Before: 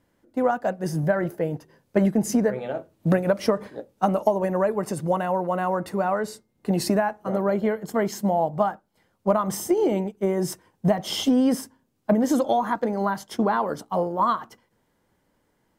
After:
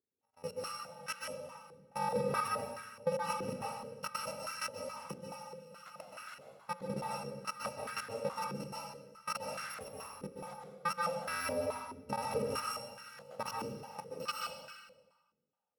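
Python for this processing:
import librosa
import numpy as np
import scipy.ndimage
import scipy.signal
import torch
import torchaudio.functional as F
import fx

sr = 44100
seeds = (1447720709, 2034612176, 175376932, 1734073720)

y = fx.bit_reversed(x, sr, seeds[0], block=128)
y = fx.level_steps(y, sr, step_db=21)
y = fx.hum_notches(y, sr, base_hz=60, count=9)
y = fx.rev_plate(y, sr, seeds[1], rt60_s=1.4, hf_ratio=0.8, predelay_ms=115, drr_db=-2.5)
y = fx.filter_held_bandpass(y, sr, hz=4.7, low_hz=370.0, high_hz=1500.0)
y = y * 10.0 ** (7.5 / 20.0)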